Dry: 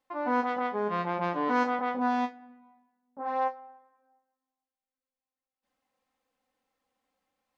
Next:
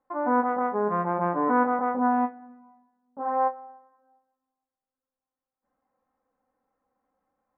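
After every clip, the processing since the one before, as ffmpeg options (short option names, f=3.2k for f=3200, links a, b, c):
-af "lowpass=f=1.5k:w=0.5412,lowpass=f=1.5k:w=1.3066,volume=4.5dB"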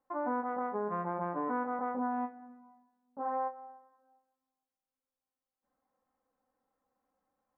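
-af "acompressor=threshold=-26dB:ratio=6,volume=-4.5dB"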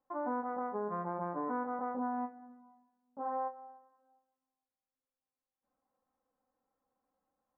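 -af "lowpass=1.7k,volume=-2dB"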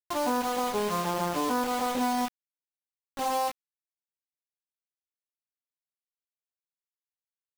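-af "acrusher=bits=6:mix=0:aa=0.000001,volume=8dB"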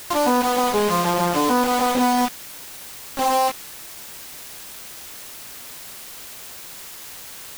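-af "aeval=exprs='val(0)+0.5*0.0211*sgn(val(0))':c=same,volume=7.5dB"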